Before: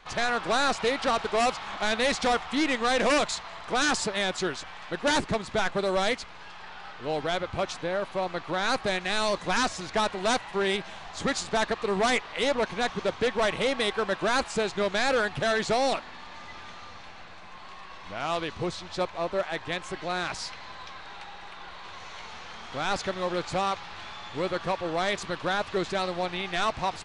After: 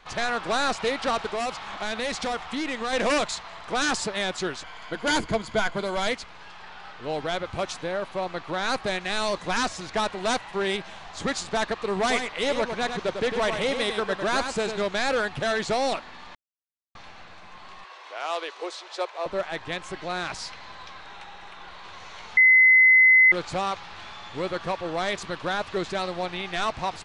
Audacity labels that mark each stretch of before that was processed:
1.290000	2.930000	downward compressor, threshold −26 dBFS
4.640000	6.070000	EQ curve with evenly spaced ripples crests per octave 1.8, crest to trough 8 dB
7.450000	7.920000	high-shelf EQ 9,300 Hz +10 dB
12.000000	14.820000	single-tap delay 100 ms −7 dB
16.350000	16.950000	silence
17.840000	19.260000	Butterworth high-pass 380 Hz
21.030000	21.670000	notch filter 4,600 Hz
22.370000	23.320000	beep over 2,040 Hz −12 dBFS

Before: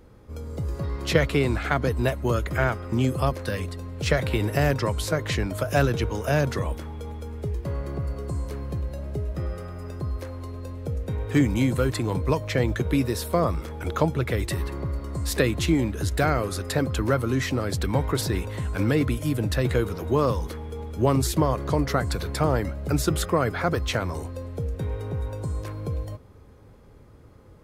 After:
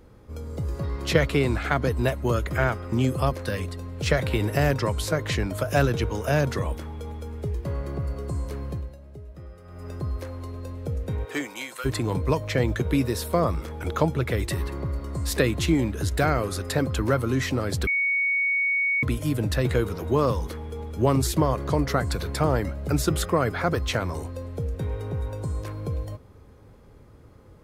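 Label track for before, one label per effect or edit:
8.680000	9.920000	duck −12.5 dB, fades 0.29 s
11.240000	11.840000	high-pass filter 390 Hz → 1,400 Hz
17.870000	19.030000	beep over 2,230 Hz −20.5 dBFS

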